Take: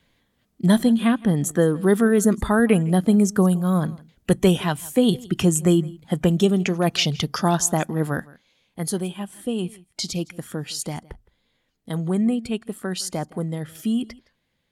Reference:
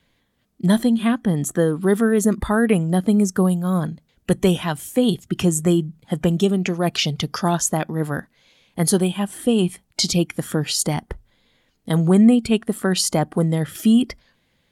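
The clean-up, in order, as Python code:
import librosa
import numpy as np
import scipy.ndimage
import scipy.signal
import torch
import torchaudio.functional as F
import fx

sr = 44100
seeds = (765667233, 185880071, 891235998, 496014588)

y = fx.fix_echo_inverse(x, sr, delay_ms=164, level_db=-22.5)
y = fx.fix_level(y, sr, at_s=8.28, step_db=8.0)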